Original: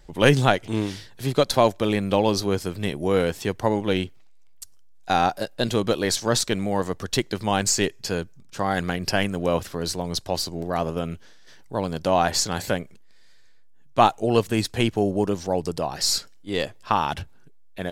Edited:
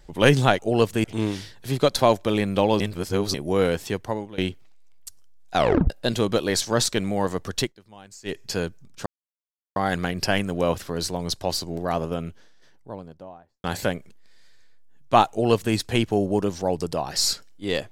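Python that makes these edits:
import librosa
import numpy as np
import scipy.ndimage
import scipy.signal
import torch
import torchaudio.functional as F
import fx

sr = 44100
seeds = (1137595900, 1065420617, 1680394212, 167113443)

y = fx.studio_fade_out(x, sr, start_s=10.67, length_s=1.82)
y = fx.edit(y, sr, fx.reverse_span(start_s=2.35, length_s=0.54),
    fx.fade_out_to(start_s=3.39, length_s=0.54, floor_db=-21.0),
    fx.tape_stop(start_s=5.11, length_s=0.34),
    fx.fade_down_up(start_s=7.15, length_s=0.77, db=-23.5, fade_s=0.13),
    fx.insert_silence(at_s=8.61, length_s=0.7),
    fx.duplicate(start_s=14.15, length_s=0.45, to_s=0.59), tone=tone)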